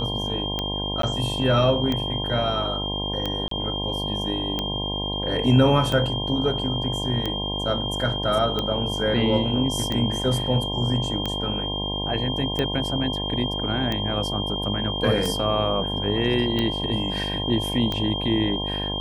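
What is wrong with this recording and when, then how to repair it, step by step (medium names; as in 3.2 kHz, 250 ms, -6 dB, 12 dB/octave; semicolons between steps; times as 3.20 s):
buzz 50 Hz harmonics 21 -30 dBFS
tick 45 rpm -12 dBFS
whine 3.2 kHz -28 dBFS
1.02–1.03 s: dropout 13 ms
3.48–3.51 s: dropout 33 ms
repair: de-click; de-hum 50 Hz, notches 21; band-stop 3.2 kHz, Q 30; interpolate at 1.02 s, 13 ms; interpolate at 3.48 s, 33 ms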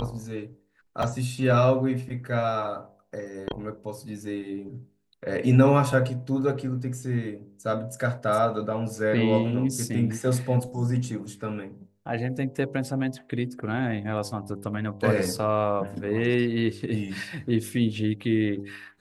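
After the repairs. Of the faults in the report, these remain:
nothing left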